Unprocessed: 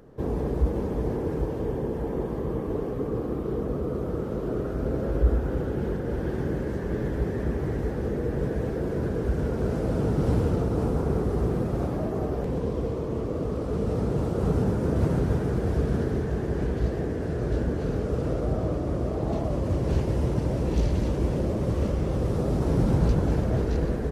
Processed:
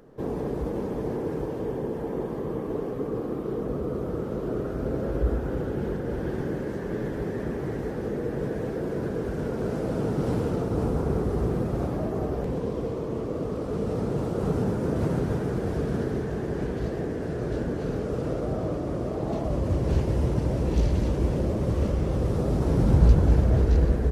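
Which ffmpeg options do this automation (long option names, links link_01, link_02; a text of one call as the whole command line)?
ffmpeg -i in.wav -af "asetnsamples=nb_out_samples=441:pad=0,asendcmd='3.65 equalizer g -4.5;6.41 equalizer g -11.5;10.71 equalizer g -1.5;12.52 equalizer g -8;19.46 equalizer g 1.5;22.86 equalizer g 8',equalizer=frequency=62:width_type=o:width=1.3:gain=-12" out.wav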